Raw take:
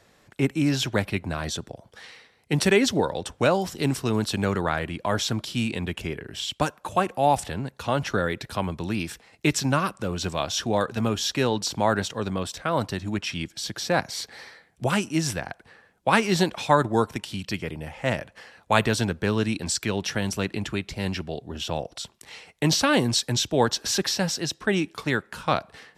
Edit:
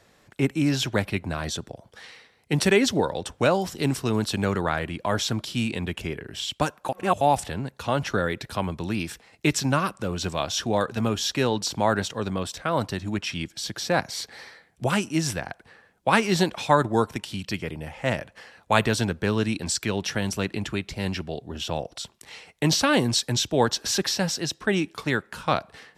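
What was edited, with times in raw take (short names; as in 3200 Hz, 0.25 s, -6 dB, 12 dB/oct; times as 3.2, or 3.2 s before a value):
6.89–7.21 reverse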